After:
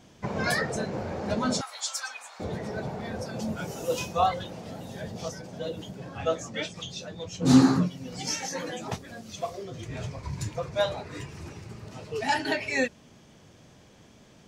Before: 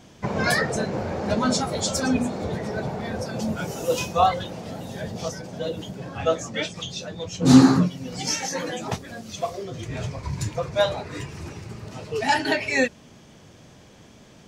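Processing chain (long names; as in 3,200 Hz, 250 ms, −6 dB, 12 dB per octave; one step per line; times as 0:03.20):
0:01.61–0:02.40: high-pass filter 1,000 Hz 24 dB per octave
level −5 dB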